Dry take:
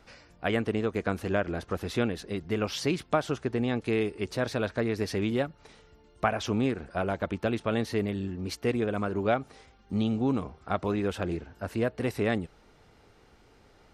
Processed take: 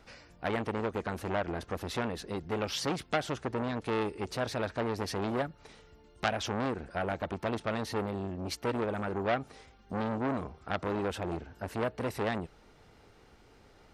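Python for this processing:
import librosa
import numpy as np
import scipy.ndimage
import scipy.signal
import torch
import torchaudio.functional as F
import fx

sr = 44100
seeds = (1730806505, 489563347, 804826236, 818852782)

y = fx.transformer_sat(x, sr, knee_hz=2300.0)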